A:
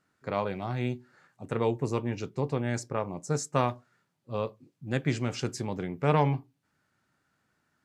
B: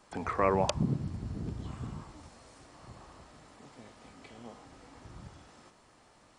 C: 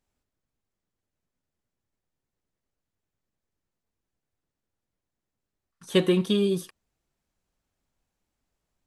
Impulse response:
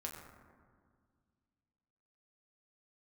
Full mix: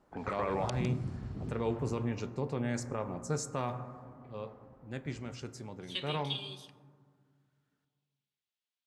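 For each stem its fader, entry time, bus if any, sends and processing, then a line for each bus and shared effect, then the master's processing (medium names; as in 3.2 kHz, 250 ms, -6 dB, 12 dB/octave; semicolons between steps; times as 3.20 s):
3.99 s -5.5 dB -> 4.37 s -14 dB, 0.00 s, send -5.5 dB, no echo send, none
-3.5 dB, 0.00 s, no send, echo send -13.5 dB, level-controlled noise filter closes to 720 Hz, open at -29.5 dBFS; auto duck -8 dB, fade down 1.55 s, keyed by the third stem
-5.5 dB, 0.00 s, send -4 dB, no echo send, band-pass filter 3.4 kHz, Q 2.1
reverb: on, RT60 1.9 s, pre-delay 6 ms
echo: delay 155 ms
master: peak limiter -22.5 dBFS, peak gain reduction 8 dB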